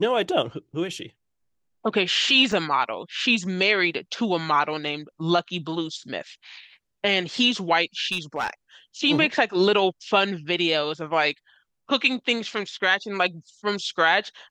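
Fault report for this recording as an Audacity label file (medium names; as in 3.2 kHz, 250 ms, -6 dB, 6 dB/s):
2.520000	2.520000	dropout 2.2 ms
8.110000	8.500000	clipped -20.5 dBFS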